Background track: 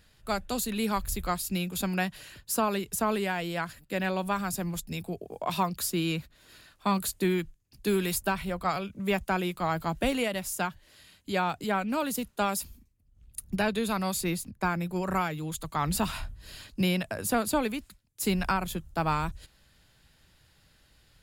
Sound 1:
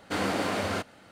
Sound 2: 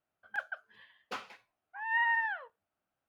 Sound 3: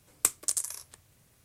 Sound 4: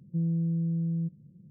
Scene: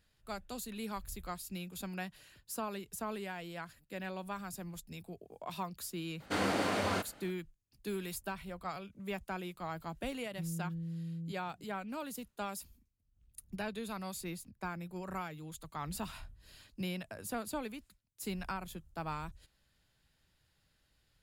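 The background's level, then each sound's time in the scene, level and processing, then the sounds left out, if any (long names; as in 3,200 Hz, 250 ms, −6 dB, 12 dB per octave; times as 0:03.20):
background track −12 dB
0:06.20: mix in 1 −3.5 dB
0:10.24: mix in 4 −11.5 dB
not used: 2, 3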